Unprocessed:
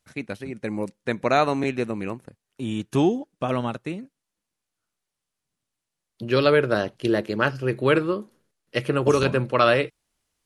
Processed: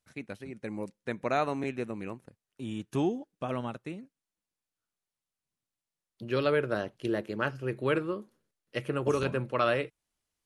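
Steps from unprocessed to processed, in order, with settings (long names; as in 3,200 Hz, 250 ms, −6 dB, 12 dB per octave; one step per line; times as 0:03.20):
dynamic equaliser 4,500 Hz, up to −5 dB, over −47 dBFS, Q 1.9
level −8.5 dB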